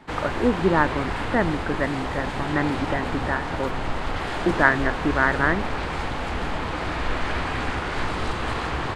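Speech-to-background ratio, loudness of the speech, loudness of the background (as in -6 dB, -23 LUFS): 4.0 dB, -24.5 LUFS, -28.5 LUFS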